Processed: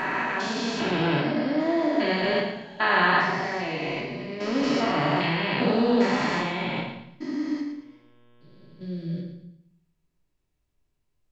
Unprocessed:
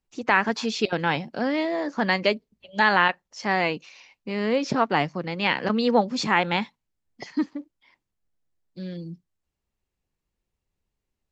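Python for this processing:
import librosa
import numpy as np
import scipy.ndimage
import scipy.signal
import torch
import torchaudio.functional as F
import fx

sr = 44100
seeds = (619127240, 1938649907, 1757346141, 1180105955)

y = fx.spec_steps(x, sr, hold_ms=400)
y = fx.high_shelf(y, sr, hz=3800.0, db=9.0, at=(4.63, 5.27))
y = fx.dmg_buzz(y, sr, base_hz=120.0, harmonics=30, level_db=-64.0, tilt_db=-5, odd_only=False, at=(7.56, 8.82), fade=0.02)
y = fx.echo_thinned(y, sr, ms=113, feedback_pct=34, hz=310.0, wet_db=-8.0)
y = fx.room_shoebox(y, sr, seeds[0], volume_m3=740.0, walls='furnished', distance_m=2.9)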